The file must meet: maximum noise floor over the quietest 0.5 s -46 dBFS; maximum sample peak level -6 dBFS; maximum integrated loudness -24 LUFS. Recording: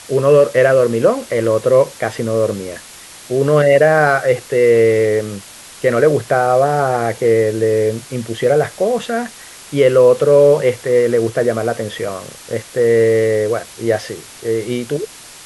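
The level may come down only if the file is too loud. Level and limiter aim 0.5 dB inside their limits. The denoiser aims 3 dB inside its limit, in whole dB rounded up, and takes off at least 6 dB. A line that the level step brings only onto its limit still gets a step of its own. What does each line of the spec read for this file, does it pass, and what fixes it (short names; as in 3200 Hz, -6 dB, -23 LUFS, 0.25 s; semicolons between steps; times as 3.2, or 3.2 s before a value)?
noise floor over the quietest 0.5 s -38 dBFS: fail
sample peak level -1.5 dBFS: fail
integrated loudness -15.0 LUFS: fail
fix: gain -9.5 dB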